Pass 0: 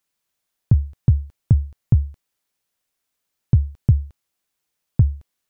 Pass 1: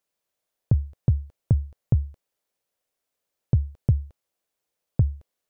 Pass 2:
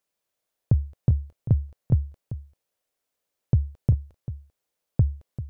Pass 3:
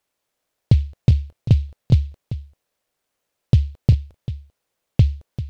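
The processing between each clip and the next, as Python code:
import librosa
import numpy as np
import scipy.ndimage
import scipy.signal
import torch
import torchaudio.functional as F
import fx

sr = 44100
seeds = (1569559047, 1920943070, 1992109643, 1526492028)

y1 = fx.peak_eq(x, sr, hz=540.0, db=9.5, octaves=1.1)
y1 = F.gain(torch.from_numpy(y1), -5.5).numpy()
y2 = y1 + 10.0 ** (-13.5 / 20.0) * np.pad(y1, (int(392 * sr / 1000.0), 0))[:len(y1)]
y3 = fx.noise_mod_delay(y2, sr, seeds[0], noise_hz=3200.0, depth_ms=0.049)
y3 = F.gain(torch.from_numpy(y3), 6.0).numpy()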